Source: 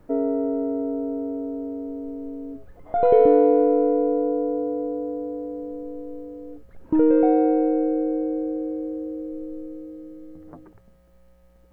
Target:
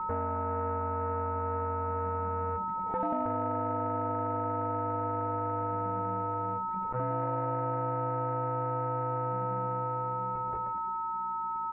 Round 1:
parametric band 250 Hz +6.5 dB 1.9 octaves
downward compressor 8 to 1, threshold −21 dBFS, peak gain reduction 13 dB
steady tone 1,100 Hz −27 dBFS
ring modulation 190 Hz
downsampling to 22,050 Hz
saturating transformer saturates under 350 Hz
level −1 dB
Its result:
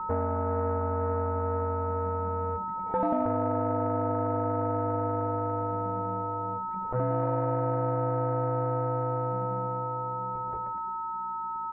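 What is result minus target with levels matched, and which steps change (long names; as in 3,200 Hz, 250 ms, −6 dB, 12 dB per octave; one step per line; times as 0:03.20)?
downward compressor: peak gain reduction −5.5 dB
change: downward compressor 8 to 1, threshold −27.5 dBFS, peak gain reduction 19 dB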